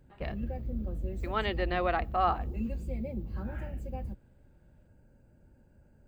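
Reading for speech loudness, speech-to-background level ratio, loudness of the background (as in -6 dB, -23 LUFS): -31.0 LUFS, 7.0 dB, -38.0 LUFS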